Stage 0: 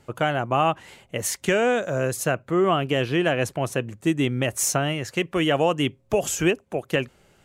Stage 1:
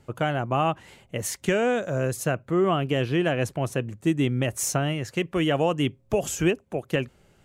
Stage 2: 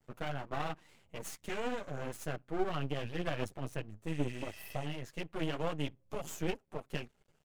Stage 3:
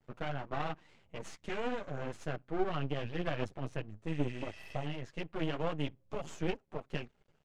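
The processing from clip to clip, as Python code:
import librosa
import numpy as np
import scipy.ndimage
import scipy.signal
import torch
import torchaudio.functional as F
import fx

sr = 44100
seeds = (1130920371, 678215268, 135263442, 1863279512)

y1 = fx.low_shelf(x, sr, hz=310.0, db=6.0)
y1 = y1 * librosa.db_to_amplitude(-4.0)
y2 = fx.chorus_voices(y1, sr, voices=4, hz=1.1, base_ms=10, depth_ms=3.7, mix_pct=55)
y2 = fx.spec_repair(y2, sr, seeds[0], start_s=4.12, length_s=0.72, low_hz=1100.0, high_hz=11000.0, source='before')
y2 = np.maximum(y2, 0.0)
y2 = y2 * librosa.db_to_amplitude(-7.0)
y3 = fx.air_absorb(y2, sr, metres=96.0)
y3 = y3 * librosa.db_to_amplitude(1.0)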